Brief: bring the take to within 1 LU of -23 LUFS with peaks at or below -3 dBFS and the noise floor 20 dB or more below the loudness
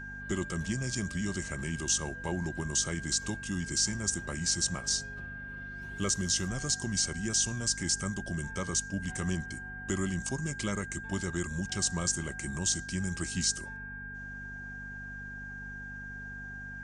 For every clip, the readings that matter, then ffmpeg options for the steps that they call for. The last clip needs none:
hum 50 Hz; highest harmonic 250 Hz; hum level -45 dBFS; steady tone 1.6 kHz; tone level -41 dBFS; loudness -32.5 LUFS; peak level -17.5 dBFS; loudness target -23.0 LUFS
-> -af "bandreject=f=50:t=h:w=4,bandreject=f=100:t=h:w=4,bandreject=f=150:t=h:w=4,bandreject=f=200:t=h:w=4,bandreject=f=250:t=h:w=4"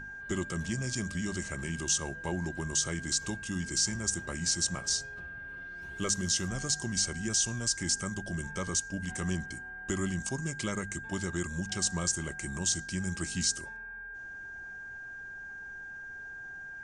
hum not found; steady tone 1.6 kHz; tone level -41 dBFS
-> -af "bandreject=f=1600:w=30"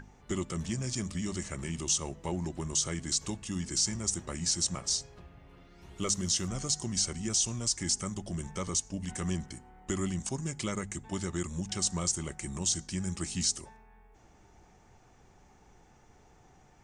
steady tone not found; loudness -32.0 LUFS; peak level -18.0 dBFS; loudness target -23.0 LUFS
-> -af "volume=2.82"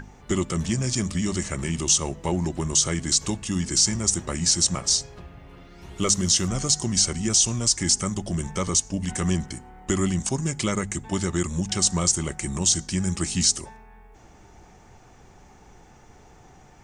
loudness -23.0 LUFS; peak level -9.0 dBFS; noise floor -51 dBFS

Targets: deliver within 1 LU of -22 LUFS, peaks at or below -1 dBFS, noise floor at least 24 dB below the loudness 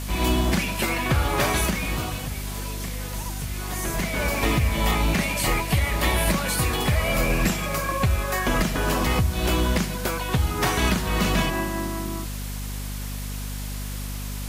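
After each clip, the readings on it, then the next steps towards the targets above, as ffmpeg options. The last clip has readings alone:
hum 50 Hz; highest harmonic 250 Hz; hum level -30 dBFS; noise floor -31 dBFS; noise floor target -49 dBFS; loudness -24.5 LUFS; peak level -10.0 dBFS; loudness target -22.0 LUFS
-> -af "bandreject=f=50:t=h:w=6,bandreject=f=100:t=h:w=6,bandreject=f=150:t=h:w=6,bandreject=f=200:t=h:w=6,bandreject=f=250:t=h:w=6"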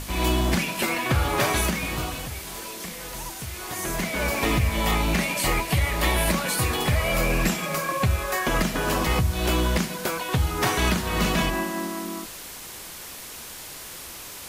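hum not found; noise floor -39 dBFS; noise floor target -49 dBFS
-> -af "afftdn=nr=10:nf=-39"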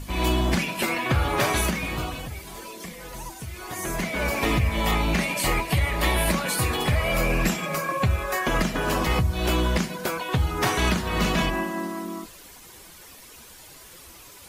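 noise floor -47 dBFS; noise floor target -49 dBFS
-> -af "afftdn=nr=6:nf=-47"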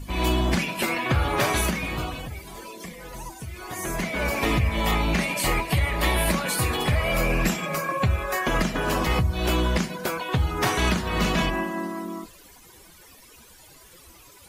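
noise floor -50 dBFS; loudness -24.5 LUFS; peak level -10.5 dBFS; loudness target -22.0 LUFS
-> -af "volume=1.33"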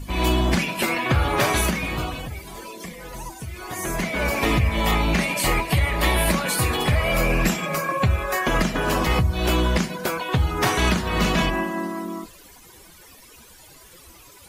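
loudness -22.0 LUFS; peak level -8.0 dBFS; noise floor -48 dBFS

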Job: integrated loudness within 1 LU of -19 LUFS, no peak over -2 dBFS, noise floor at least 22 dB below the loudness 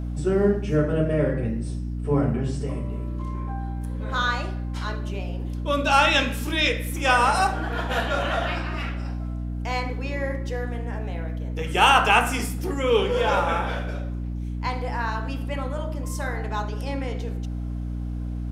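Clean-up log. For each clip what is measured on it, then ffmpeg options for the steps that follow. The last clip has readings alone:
hum 60 Hz; highest harmonic 300 Hz; hum level -27 dBFS; loudness -25.0 LUFS; peak level -3.5 dBFS; loudness target -19.0 LUFS
-> -af "bandreject=f=60:t=h:w=6,bandreject=f=120:t=h:w=6,bandreject=f=180:t=h:w=6,bandreject=f=240:t=h:w=6,bandreject=f=300:t=h:w=6"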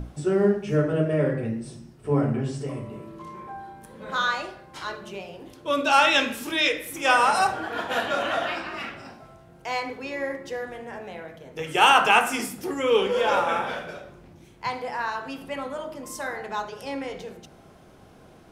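hum not found; loudness -24.5 LUFS; peak level -3.5 dBFS; loudness target -19.0 LUFS
-> -af "volume=1.88,alimiter=limit=0.794:level=0:latency=1"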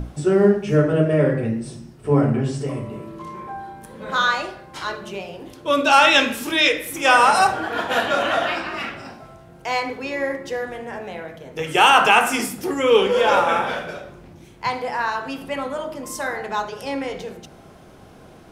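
loudness -19.5 LUFS; peak level -2.0 dBFS; noise floor -46 dBFS

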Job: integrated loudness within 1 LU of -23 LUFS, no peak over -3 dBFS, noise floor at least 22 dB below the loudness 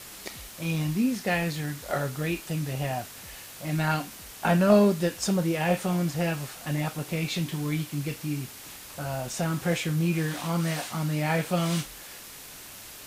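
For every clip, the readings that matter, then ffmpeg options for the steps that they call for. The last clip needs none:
noise floor -44 dBFS; noise floor target -50 dBFS; loudness -28.0 LUFS; peak level -8.5 dBFS; loudness target -23.0 LUFS
-> -af "afftdn=nr=6:nf=-44"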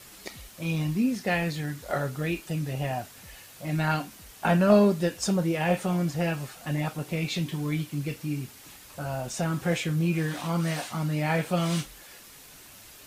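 noise floor -49 dBFS; noise floor target -50 dBFS
-> -af "afftdn=nr=6:nf=-49"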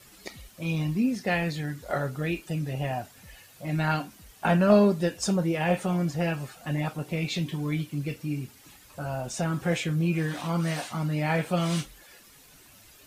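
noise floor -54 dBFS; loudness -28.0 LUFS; peak level -8.5 dBFS; loudness target -23.0 LUFS
-> -af "volume=1.78"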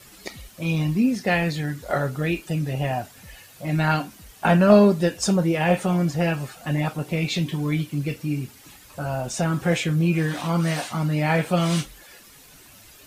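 loudness -23.0 LUFS; peak level -3.5 dBFS; noise floor -49 dBFS

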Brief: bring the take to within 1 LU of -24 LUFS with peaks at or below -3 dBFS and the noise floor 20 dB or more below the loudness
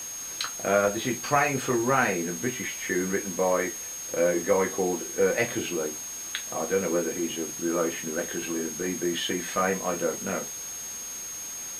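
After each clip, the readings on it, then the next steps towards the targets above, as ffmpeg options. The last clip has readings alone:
steady tone 6.5 kHz; tone level -35 dBFS; noise floor -37 dBFS; noise floor target -48 dBFS; loudness -27.5 LUFS; peak level -8.0 dBFS; loudness target -24.0 LUFS
-> -af "bandreject=f=6500:w=30"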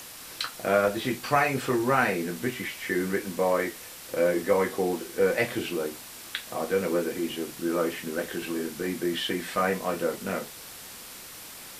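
steady tone not found; noise floor -44 dBFS; noise floor target -48 dBFS
-> -af "afftdn=nr=6:nf=-44"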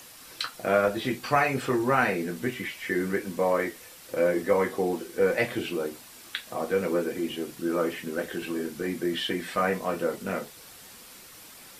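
noise floor -48 dBFS; loudness -28.0 LUFS; peak level -8.0 dBFS; loudness target -24.0 LUFS
-> -af "volume=1.58"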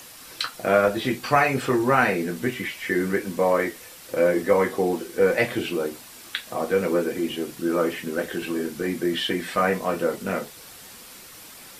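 loudness -24.0 LUFS; peak level -4.0 dBFS; noise floor -44 dBFS

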